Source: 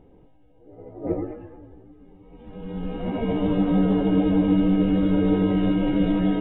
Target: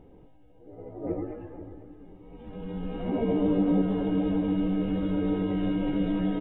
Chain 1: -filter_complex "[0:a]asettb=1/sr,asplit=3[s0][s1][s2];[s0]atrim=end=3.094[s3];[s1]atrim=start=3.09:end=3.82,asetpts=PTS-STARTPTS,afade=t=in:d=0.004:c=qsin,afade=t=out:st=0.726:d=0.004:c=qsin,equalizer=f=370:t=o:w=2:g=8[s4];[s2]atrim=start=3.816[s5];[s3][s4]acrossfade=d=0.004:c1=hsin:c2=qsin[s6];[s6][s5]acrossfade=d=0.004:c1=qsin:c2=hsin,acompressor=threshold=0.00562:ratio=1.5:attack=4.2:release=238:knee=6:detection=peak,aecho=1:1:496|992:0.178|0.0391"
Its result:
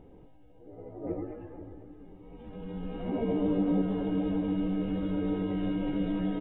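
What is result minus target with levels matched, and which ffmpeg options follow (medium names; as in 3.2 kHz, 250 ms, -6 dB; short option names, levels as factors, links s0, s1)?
compression: peak gain reduction +3.5 dB
-filter_complex "[0:a]asettb=1/sr,asplit=3[s0][s1][s2];[s0]atrim=end=3.094[s3];[s1]atrim=start=3.09:end=3.82,asetpts=PTS-STARTPTS,afade=t=in:d=0.004:c=qsin,afade=t=out:st=0.726:d=0.004:c=qsin,equalizer=f=370:t=o:w=2:g=8[s4];[s2]atrim=start=3.816[s5];[s3][s4]acrossfade=d=0.004:c1=hsin:c2=qsin[s6];[s6][s5]acrossfade=d=0.004:c1=qsin:c2=hsin,acompressor=threshold=0.0178:ratio=1.5:attack=4.2:release=238:knee=6:detection=peak,aecho=1:1:496|992:0.178|0.0391"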